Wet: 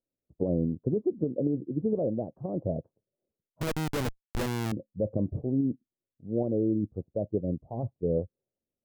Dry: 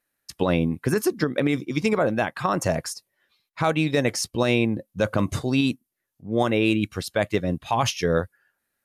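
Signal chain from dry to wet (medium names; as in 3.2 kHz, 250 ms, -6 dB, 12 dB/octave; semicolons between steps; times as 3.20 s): steep low-pass 600 Hz 36 dB/octave; 3.61–4.72 s: Schmitt trigger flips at -24.5 dBFS; trim -5 dB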